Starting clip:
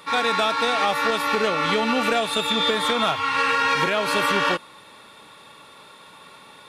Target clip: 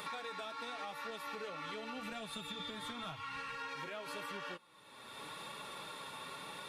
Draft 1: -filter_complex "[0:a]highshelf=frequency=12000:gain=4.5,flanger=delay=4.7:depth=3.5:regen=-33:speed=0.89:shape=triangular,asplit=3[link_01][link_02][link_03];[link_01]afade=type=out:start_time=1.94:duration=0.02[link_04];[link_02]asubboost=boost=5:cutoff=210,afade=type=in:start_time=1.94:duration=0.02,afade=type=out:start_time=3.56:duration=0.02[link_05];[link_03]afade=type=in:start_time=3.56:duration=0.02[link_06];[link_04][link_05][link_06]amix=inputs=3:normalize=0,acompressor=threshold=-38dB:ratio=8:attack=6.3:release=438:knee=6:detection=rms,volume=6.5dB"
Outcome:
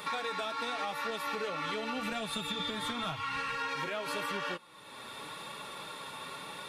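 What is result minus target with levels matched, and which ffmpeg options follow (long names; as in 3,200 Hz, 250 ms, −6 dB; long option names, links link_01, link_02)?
downward compressor: peak gain reduction −8.5 dB
-filter_complex "[0:a]highshelf=frequency=12000:gain=4.5,flanger=delay=4.7:depth=3.5:regen=-33:speed=0.89:shape=triangular,asplit=3[link_01][link_02][link_03];[link_01]afade=type=out:start_time=1.94:duration=0.02[link_04];[link_02]asubboost=boost=5:cutoff=210,afade=type=in:start_time=1.94:duration=0.02,afade=type=out:start_time=3.56:duration=0.02[link_05];[link_03]afade=type=in:start_time=3.56:duration=0.02[link_06];[link_04][link_05][link_06]amix=inputs=3:normalize=0,acompressor=threshold=-47.5dB:ratio=8:attack=6.3:release=438:knee=6:detection=rms,volume=6.5dB"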